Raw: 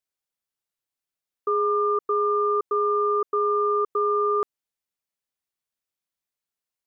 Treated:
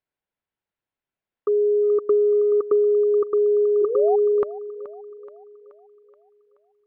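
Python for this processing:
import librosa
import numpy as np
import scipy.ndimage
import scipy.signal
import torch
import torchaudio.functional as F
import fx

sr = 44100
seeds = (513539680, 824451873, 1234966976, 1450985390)

p1 = fx.notch(x, sr, hz=1200.0, q=9.8)
p2 = fx.transient(p1, sr, attack_db=4, sustain_db=-10, at=(1.82, 2.91), fade=0.02)
p3 = fx.spec_paint(p2, sr, seeds[0], shape='rise', start_s=3.81, length_s=0.35, low_hz=370.0, high_hz=810.0, level_db=-31.0)
p4 = fx.air_absorb(p3, sr, metres=460.0)
p5 = p4 + fx.echo_thinned(p4, sr, ms=427, feedback_pct=56, hz=270.0, wet_db=-15.0, dry=0)
y = p5 * 10.0 ** (7.5 / 20.0)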